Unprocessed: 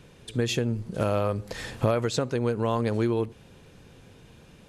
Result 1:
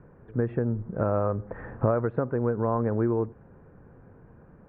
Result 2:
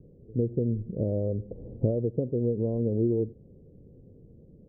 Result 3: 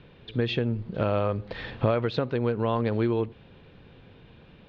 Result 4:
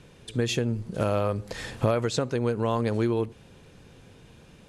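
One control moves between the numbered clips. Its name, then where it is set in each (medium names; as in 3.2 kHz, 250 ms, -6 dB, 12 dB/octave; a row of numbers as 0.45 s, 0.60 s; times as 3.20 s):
steep low-pass, frequency: 1.6 kHz, 520 Hz, 4 kHz, 12 kHz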